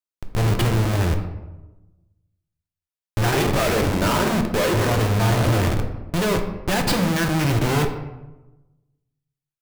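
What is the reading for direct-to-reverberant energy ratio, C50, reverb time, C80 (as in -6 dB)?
4.0 dB, 8.0 dB, 1.1 s, 10.0 dB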